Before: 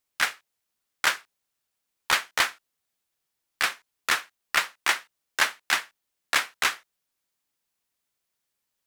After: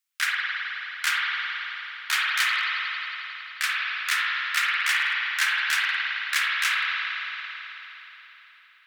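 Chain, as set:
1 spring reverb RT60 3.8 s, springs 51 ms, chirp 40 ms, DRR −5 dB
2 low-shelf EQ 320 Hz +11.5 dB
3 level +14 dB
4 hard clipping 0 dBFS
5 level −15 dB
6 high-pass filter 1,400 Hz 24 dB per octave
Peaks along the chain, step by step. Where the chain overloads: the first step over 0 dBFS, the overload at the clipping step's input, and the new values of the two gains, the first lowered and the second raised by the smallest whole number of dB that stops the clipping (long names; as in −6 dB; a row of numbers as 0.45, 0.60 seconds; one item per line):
−6.5, −5.5, +8.5, 0.0, −15.0, −10.0 dBFS
step 3, 8.5 dB
step 3 +5 dB, step 5 −6 dB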